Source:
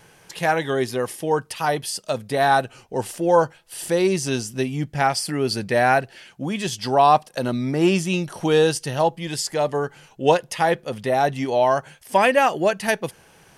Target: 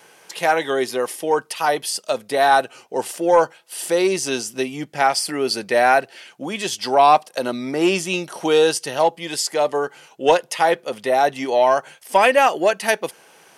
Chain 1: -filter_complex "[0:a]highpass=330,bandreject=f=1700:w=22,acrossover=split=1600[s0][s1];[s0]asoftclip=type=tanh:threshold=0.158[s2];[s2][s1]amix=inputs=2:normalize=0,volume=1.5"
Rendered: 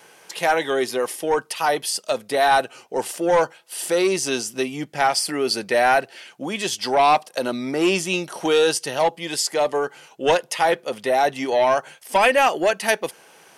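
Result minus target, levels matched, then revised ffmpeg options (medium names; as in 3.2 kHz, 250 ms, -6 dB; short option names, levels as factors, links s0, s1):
saturation: distortion +11 dB
-filter_complex "[0:a]highpass=330,bandreject=f=1700:w=22,acrossover=split=1600[s0][s1];[s0]asoftclip=type=tanh:threshold=0.422[s2];[s2][s1]amix=inputs=2:normalize=0,volume=1.5"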